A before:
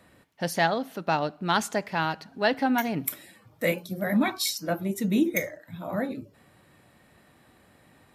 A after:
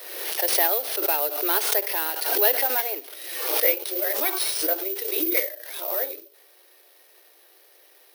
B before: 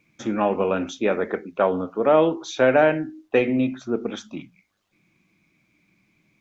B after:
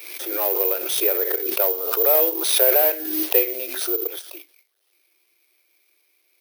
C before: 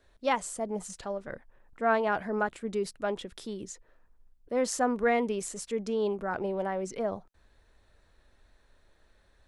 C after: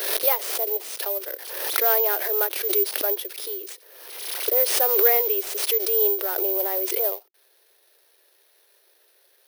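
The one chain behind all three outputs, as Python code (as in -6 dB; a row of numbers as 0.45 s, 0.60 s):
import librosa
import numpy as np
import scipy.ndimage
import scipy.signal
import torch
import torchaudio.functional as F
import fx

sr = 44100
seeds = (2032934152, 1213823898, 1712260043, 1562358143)

y = fx.cvsd(x, sr, bps=32000)
y = scipy.signal.sosfilt(scipy.signal.butter(12, 360.0, 'highpass', fs=sr, output='sos'), y)
y = fx.peak_eq(y, sr, hz=1100.0, db=-10.0, octaves=2.2)
y = (np.kron(y[::3], np.eye(3)[0]) * 3)[:len(y)]
y = fx.pre_swell(y, sr, db_per_s=46.0)
y = y * 10.0 ** (-1.5 / 20.0) / np.max(np.abs(y))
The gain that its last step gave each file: +6.0 dB, +2.0 dB, +8.5 dB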